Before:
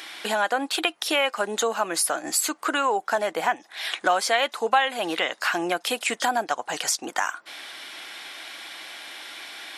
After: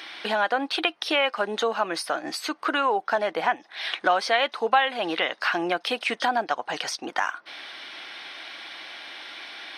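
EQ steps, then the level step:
Savitzky-Golay smoothing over 15 samples
0.0 dB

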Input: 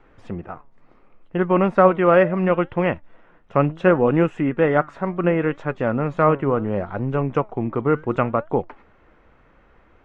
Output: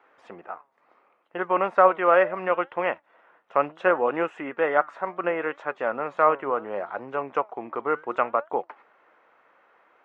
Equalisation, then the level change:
high-pass filter 740 Hz 12 dB per octave
high-shelf EQ 2,000 Hz −9.5 dB
+3.0 dB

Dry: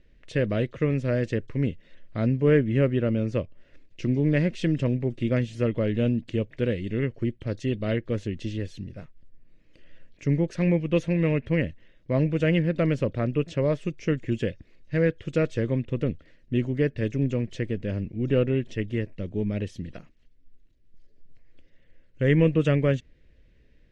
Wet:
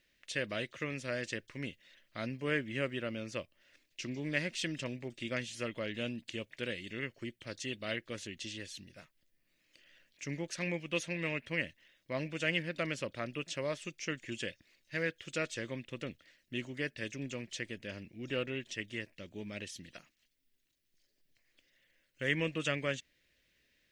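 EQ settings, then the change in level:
spectral tilt +4.5 dB per octave
parametric band 450 Hz −5.5 dB 0.3 octaves
−6.0 dB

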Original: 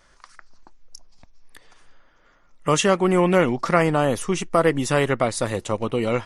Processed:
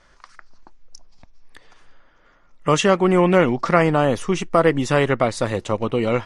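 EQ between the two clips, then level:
high-frequency loss of the air 65 metres
+2.5 dB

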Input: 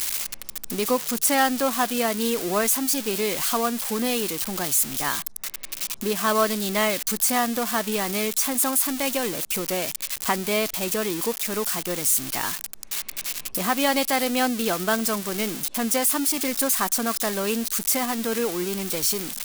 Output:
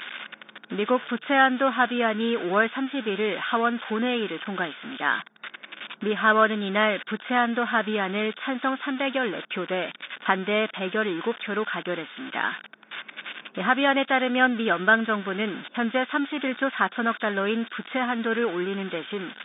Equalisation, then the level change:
linear-phase brick-wall band-pass 160–3,700 Hz
parametric band 1,500 Hz +11.5 dB 0.3 octaves
0.0 dB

